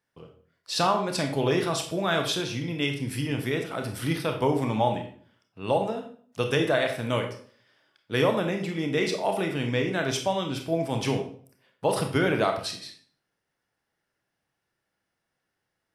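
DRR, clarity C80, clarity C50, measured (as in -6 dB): 4.0 dB, 11.5 dB, 7.5 dB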